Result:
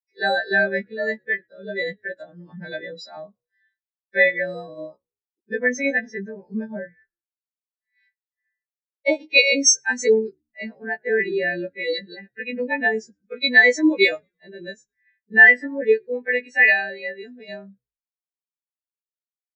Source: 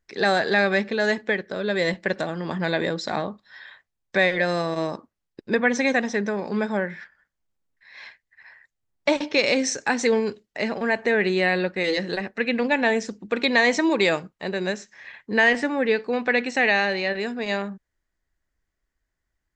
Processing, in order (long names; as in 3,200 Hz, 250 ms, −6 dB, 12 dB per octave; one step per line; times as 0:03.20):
every partial snapped to a pitch grid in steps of 2 semitones
echo with shifted repeats 109 ms, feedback 51%, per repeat −70 Hz, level −18 dB
every bin expanded away from the loudest bin 2.5 to 1
level +2 dB